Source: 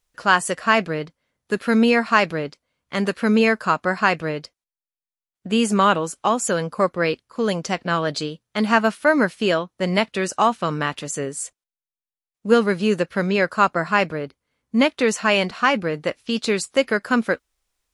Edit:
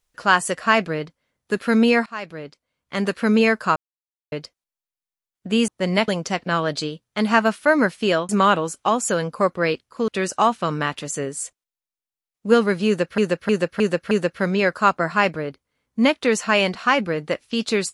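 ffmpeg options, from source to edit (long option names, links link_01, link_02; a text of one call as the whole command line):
ffmpeg -i in.wav -filter_complex "[0:a]asplit=12[link_01][link_02][link_03][link_04][link_05][link_06][link_07][link_08][link_09][link_10][link_11][link_12];[link_01]atrim=end=2.06,asetpts=PTS-STARTPTS,afade=type=out:start_time=2.056:duration=0.004:curve=hsin:silence=0.0891251[link_13];[link_02]atrim=start=2.06:end=3.76,asetpts=PTS-STARTPTS,afade=type=in:duration=1.06:silence=0.0891251,afade=type=out:start_time=1.696:duration=0.004:curve=hsin[link_14];[link_03]atrim=start=3.76:end=4.32,asetpts=PTS-STARTPTS,volume=0[link_15];[link_04]atrim=start=4.32:end=5.682,asetpts=PTS-STARTPTS,afade=type=in:duration=0.004:curve=hsin[link_16];[link_05]atrim=start=9.678:end=10.082[link_17];[link_06]atrim=start=7.468:end=9.682[link_18];[link_07]atrim=start=5.678:end=7.472[link_19];[link_08]atrim=start=10.078:end=13.182[link_20];[link_09]atrim=start=12.868:end=13.182[link_21];[link_10]atrim=start=12.868:end=13.182[link_22];[link_11]atrim=start=12.868:end=13.182[link_23];[link_12]atrim=start=12.868[link_24];[link_13][link_14][link_15][link_16]concat=n=4:v=0:a=1[link_25];[link_25][link_17]acrossfade=duration=0.004:curve1=hsin:curve2=hsin[link_26];[link_26][link_18]acrossfade=duration=0.004:curve1=hsin:curve2=hsin[link_27];[link_27][link_19]acrossfade=duration=0.004:curve1=hsin:curve2=hsin[link_28];[link_28][link_20]acrossfade=duration=0.004:curve1=hsin:curve2=hsin[link_29];[link_29][link_21]acrossfade=duration=0.004:curve1=hsin:curve2=hsin[link_30];[link_30][link_22]acrossfade=duration=0.004:curve1=hsin:curve2=hsin[link_31];[link_31][link_23]acrossfade=duration=0.004:curve1=hsin:curve2=hsin[link_32];[link_32][link_24]acrossfade=duration=0.004:curve1=hsin:curve2=hsin" out.wav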